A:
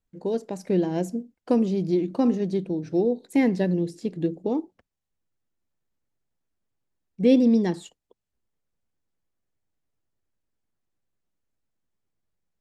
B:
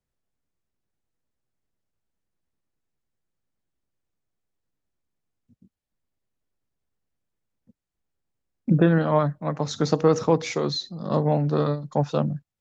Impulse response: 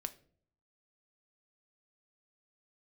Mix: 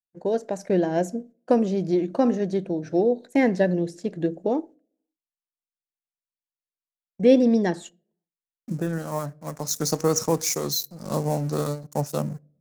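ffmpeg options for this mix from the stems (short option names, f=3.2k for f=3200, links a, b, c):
-filter_complex "[0:a]agate=range=-32dB:threshold=-42dB:ratio=16:detection=peak,equalizer=f=630:t=o:w=0.67:g=10,equalizer=f=1.6k:t=o:w=0.67:g=9,equalizer=f=6.3k:t=o:w=0.67:g=6,volume=-2.5dB,asplit=3[a][b][c];[b]volume=-13dB[d];[1:a]aeval=exprs='sgn(val(0))*max(abs(val(0))-0.00841,0)':c=same,aexciter=amount=7.8:drive=7.2:freq=5.1k,volume=-4.5dB,asplit=2[e][f];[f]volume=-10.5dB[g];[c]apad=whole_len=555854[h];[e][h]sidechaincompress=threshold=-40dB:ratio=4:attack=16:release=1460[i];[2:a]atrim=start_sample=2205[j];[d][g]amix=inputs=2:normalize=0[k];[k][j]afir=irnorm=-1:irlink=0[l];[a][i][l]amix=inputs=3:normalize=0,equalizer=f=4.9k:w=7.7:g=-2.5"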